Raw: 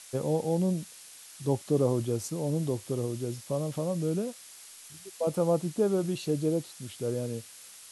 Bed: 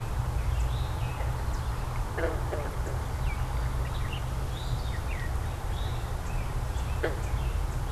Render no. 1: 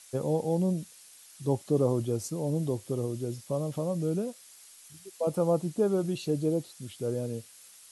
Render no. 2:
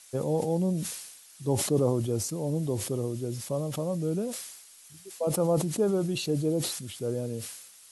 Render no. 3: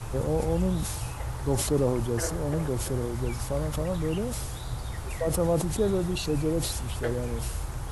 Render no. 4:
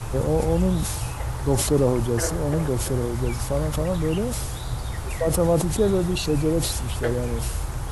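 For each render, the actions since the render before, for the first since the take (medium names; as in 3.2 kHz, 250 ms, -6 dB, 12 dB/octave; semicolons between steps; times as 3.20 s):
noise reduction 6 dB, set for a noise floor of -50 dBFS
decay stretcher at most 55 dB/s
add bed -3 dB
trim +5 dB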